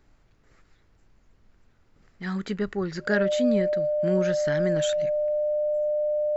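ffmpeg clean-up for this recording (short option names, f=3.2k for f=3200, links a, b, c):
-af "bandreject=f=600:w=30,agate=range=-21dB:threshold=-53dB"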